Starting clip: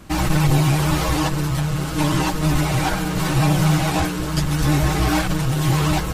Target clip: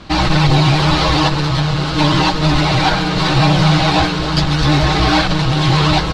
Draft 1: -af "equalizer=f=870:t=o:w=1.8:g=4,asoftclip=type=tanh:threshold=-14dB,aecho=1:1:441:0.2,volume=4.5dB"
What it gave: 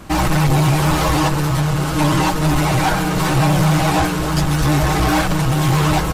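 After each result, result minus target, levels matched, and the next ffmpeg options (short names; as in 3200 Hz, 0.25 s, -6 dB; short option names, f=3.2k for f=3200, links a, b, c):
soft clip: distortion +11 dB; 4000 Hz band -6.0 dB
-af "equalizer=f=870:t=o:w=1.8:g=4,asoftclip=type=tanh:threshold=-5.5dB,aecho=1:1:441:0.2,volume=4.5dB"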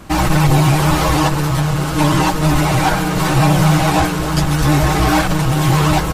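4000 Hz band -6.0 dB
-af "lowpass=f=4.2k:t=q:w=3,equalizer=f=870:t=o:w=1.8:g=4,asoftclip=type=tanh:threshold=-5.5dB,aecho=1:1:441:0.2,volume=4.5dB"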